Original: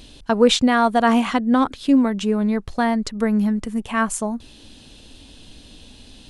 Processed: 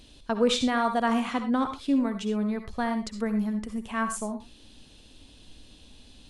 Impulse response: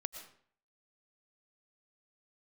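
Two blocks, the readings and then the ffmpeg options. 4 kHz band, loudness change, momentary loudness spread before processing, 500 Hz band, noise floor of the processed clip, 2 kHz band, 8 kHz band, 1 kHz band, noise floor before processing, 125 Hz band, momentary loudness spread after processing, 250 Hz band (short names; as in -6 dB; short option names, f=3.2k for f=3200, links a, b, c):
-8.0 dB, -8.5 dB, 9 LU, -8.5 dB, -53 dBFS, -8.0 dB, -8.0 dB, -8.0 dB, -46 dBFS, n/a, 8 LU, -8.5 dB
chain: -filter_complex "[1:a]atrim=start_sample=2205,afade=t=out:st=0.29:d=0.01,atrim=end_sample=13230,asetrate=79380,aresample=44100[a];[0:a][a]afir=irnorm=-1:irlink=0,volume=-1.5dB"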